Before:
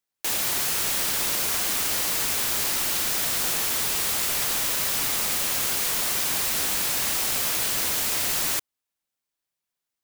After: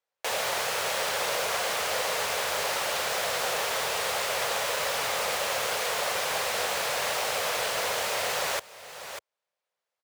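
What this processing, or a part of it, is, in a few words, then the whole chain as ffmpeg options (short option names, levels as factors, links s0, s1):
ducked delay: -filter_complex "[0:a]asplit=3[s0][s1][s2];[s1]adelay=594,volume=0.596[s3];[s2]apad=whole_len=468553[s4];[s3][s4]sidechaincompress=threshold=0.00891:ratio=4:attack=11:release=610[s5];[s0][s5]amix=inputs=2:normalize=0,highpass=71,aemphasis=mode=reproduction:type=75kf,lowshelf=f=390:t=q:w=3:g=-9,volume=1.58"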